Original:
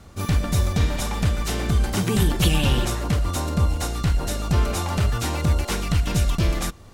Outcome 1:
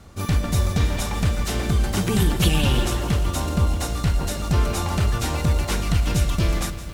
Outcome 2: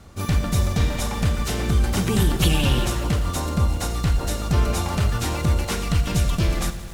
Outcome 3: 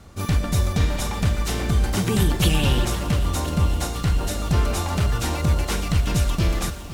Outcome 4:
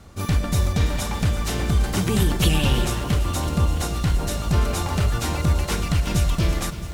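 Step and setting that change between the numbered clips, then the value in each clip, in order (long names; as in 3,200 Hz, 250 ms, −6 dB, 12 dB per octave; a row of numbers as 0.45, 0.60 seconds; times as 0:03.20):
feedback echo at a low word length, delay time: 163, 86, 510, 334 milliseconds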